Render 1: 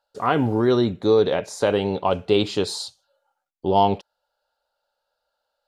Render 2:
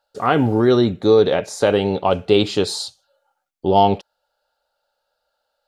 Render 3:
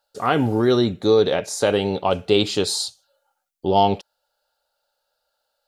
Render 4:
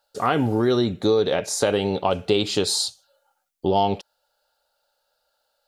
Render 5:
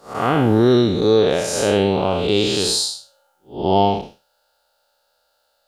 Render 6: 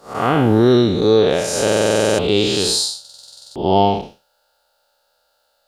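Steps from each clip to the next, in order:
notch filter 1,000 Hz, Q 11; level +4 dB
high-shelf EQ 4,400 Hz +9 dB; level −3 dB
downward compressor 2.5 to 1, threshold −21 dBFS, peak gain reduction 7 dB; level +2.5 dB
spectrum smeared in time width 192 ms; level +7.5 dB
buffer that repeats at 0:01.63/0:03.00, samples 2,048, times 11; level +1.5 dB

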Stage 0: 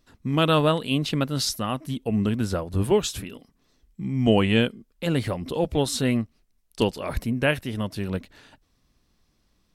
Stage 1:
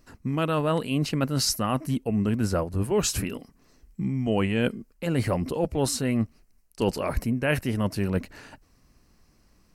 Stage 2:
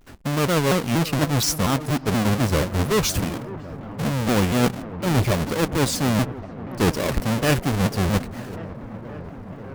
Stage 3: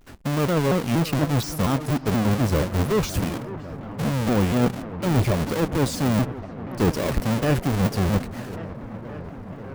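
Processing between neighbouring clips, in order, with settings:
parametric band 3,500 Hz −14 dB 0.31 octaves; reversed playback; downward compressor 6 to 1, threshold −28 dBFS, peak gain reduction 14 dB; reversed playback; level +6.5 dB
each half-wave held at its own peak; delay with a low-pass on its return 554 ms, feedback 84%, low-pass 1,500 Hz, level −16 dB; pitch modulation by a square or saw wave saw down 4.2 Hz, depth 250 cents
de-essing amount 45%

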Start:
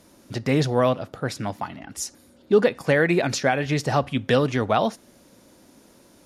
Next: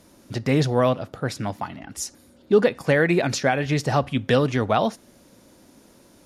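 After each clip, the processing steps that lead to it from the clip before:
low-shelf EQ 150 Hz +3 dB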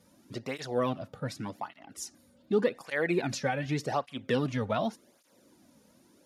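through-zero flanger with one copy inverted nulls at 0.86 Hz, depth 3.1 ms
level −6.5 dB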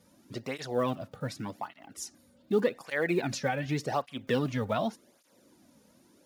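one scale factor per block 7 bits

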